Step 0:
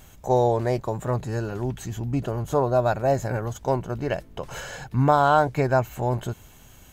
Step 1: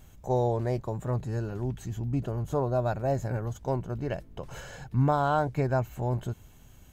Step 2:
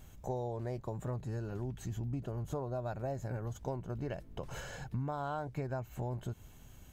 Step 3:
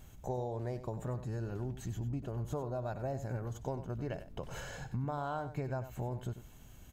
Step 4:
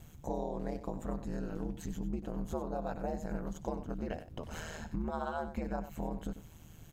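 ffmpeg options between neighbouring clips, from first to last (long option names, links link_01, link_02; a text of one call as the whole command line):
ffmpeg -i in.wav -af "lowshelf=frequency=340:gain=7.5,volume=-9dB" out.wav
ffmpeg -i in.wav -af "acompressor=threshold=-33dB:ratio=6,volume=-1.5dB" out.wav
ffmpeg -i in.wav -af "aecho=1:1:95:0.251" out.wav
ffmpeg -i in.wav -af "aeval=exprs='val(0)*sin(2*PI*79*n/s)':channel_layout=same,volume=3.5dB" out.wav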